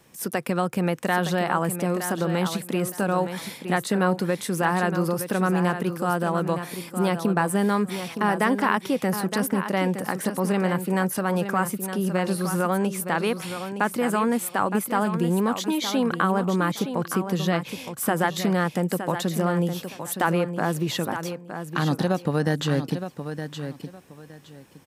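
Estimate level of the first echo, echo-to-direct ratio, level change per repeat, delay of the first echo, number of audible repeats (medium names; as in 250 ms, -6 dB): -9.0 dB, -9.0 dB, -13.0 dB, 916 ms, 2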